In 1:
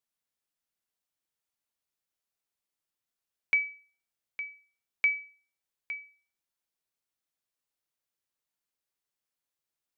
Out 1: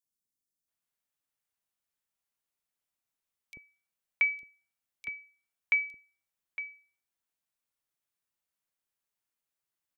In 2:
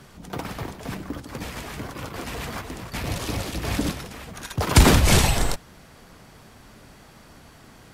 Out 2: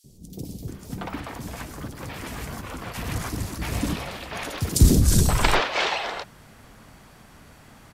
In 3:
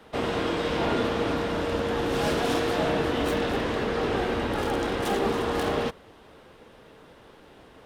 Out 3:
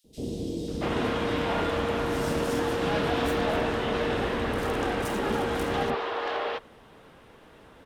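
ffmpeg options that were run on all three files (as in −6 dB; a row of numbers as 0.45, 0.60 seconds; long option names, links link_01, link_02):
-filter_complex "[0:a]acrossover=split=420|4600[link_01][link_02][link_03];[link_01]adelay=40[link_04];[link_02]adelay=680[link_05];[link_04][link_05][link_03]amix=inputs=3:normalize=0"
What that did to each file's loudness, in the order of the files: −0.5, −1.0, −1.5 LU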